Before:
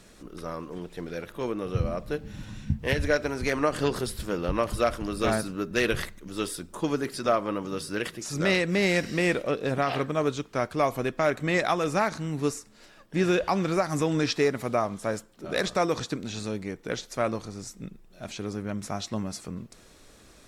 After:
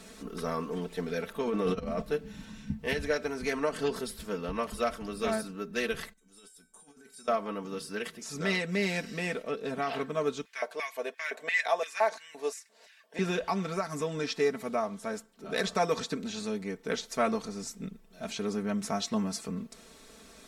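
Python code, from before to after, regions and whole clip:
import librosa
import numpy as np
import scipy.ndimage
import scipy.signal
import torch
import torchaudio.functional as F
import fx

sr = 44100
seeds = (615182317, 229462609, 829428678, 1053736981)

y = fx.chain(x, sr, fx.high_shelf(hz=11000.0, db=-10.5),
    fx.leveller(passes=1),
    fx.over_compress(threshold_db=-31.0, ratio=-1.0), at=(1.4, 2.02))
y = fx.chain(y, sr, fx.peak_eq(hz=8500.0, db=12.5, octaves=0.9),
    fx.over_compress(threshold_db=-30.0, ratio=-0.5),
    fx.comb_fb(f0_hz=760.0, decay_s=0.32, harmonics='all', damping=0.0, mix_pct=90), at=(6.13, 7.28))
y = fx.chain(y, sr, fx.notch(hz=1300.0, q=7.3),
    fx.filter_lfo_highpass(shape='square', hz=2.9, low_hz=580.0, high_hz=1900.0, q=2.2), at=(10.45, 13.19))
y = fx.low_shelf(y, sr, hz=72.0, db=-10.5)
y = y + 0.77 * np.pad(y, (int(4.5 * sr / 1000.0), 0))[:len(y)]
y = fx.rider(y, sr, range_db=10, speed_s=2.0)
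y = F.gain(torch.from_numpy(y), -7.0).numpy()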